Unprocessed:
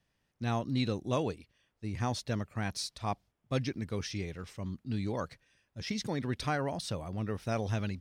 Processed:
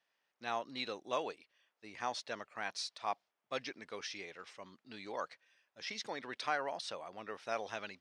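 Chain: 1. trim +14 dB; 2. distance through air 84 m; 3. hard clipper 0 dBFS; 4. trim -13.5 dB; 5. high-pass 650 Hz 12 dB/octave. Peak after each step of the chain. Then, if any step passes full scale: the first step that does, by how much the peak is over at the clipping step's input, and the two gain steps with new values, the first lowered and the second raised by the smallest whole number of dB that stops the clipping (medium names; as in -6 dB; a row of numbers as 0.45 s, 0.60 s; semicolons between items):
-4.0 dBFS, -4.5 dBFS, -4.5 dBFS, -18.0 dBFS, -20.5 dBFS; nothing clips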